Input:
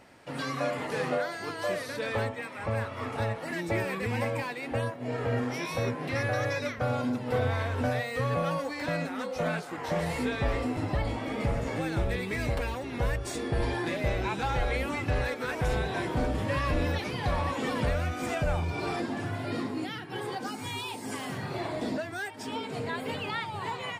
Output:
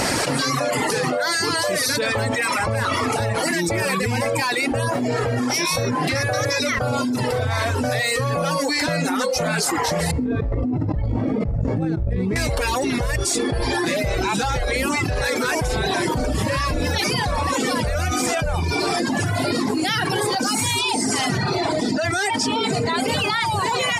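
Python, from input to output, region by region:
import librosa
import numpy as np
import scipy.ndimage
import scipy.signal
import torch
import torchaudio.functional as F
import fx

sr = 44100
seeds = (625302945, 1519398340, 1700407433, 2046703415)

y = fx.chain(x, sr, fx.bandpass_q(hz=120.0, q=0.64),
    fx.over_compress(threshold_db=-37.0, ratio=-0.5), at=(10.11, 12.36))
y = fx.chain(y, sr, fx.lowpass(hz=8200.0, slope=12),
    fx.notch_comb(f0_hz=550.0), at=(20.79, 23.08))
y = fx.dereverb_blind(y, sr, rt60_s=1.2)
y = fx.band_shelf(y, sr, hz=7200.0, db=9.5, octaves=1.7)
y = fx.env_flatten(y, sr, amount_pct=100)
y = F.gain(torch.from_numpy(y), 3.0).numpy()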